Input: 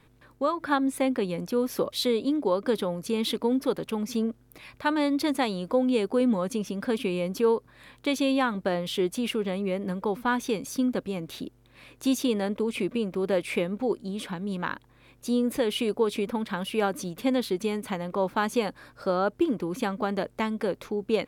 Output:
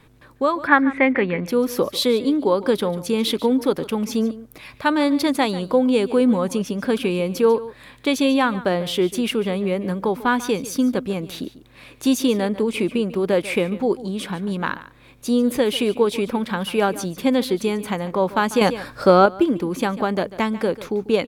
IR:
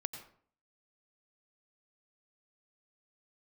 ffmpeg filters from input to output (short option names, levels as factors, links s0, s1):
-filter_complex "[0:a]asettb=1/sr,asplit=3[s0][s1][s2];[s0]atrim=end=0.674[s3];[s1]atrim=start=0.67:end=1.46,asetpts=PTS-STARTPTS,afade=t=in:d=0.004:c=qsin,afade=t=out:st=0.786:d=0.004:c=qsin,lowpass=f=2000:t=q:w=5.9[s4];[s2]atrim=start=1.456[s5];[s3][s4]acrossfade=d=0.004:c1=hsin:c2=qsin[s6];[s6][s5]acrossfade=d=0.004:c1=qsin:c2=hsin,asplit=2[s7][s8];[s8]aecho=0:1:144:0.15[s9];[s7][s9]amix=inputs=2:normalize=0,asettb=1/sr,asplit=3[s10][s11][s12];[s10]atrim=end=18.614[s13];[s11]atrim=start=18.61:end=19.26,asetpts=PTS-STARTPTS,afade=t=in:d=0.004:c=qsin,afade=t=out:st=0.646:d=0.004:c=qsin,acontrast=81[s14];[s12]atrim=start=19.256[s15];[s13][s14]acrossfade=d=0.004:c1=hsin:c2=qsin[s16];[s16][s15]acrossfade=d=0.004:c1=qsin:c2=hsin,volume=2.11"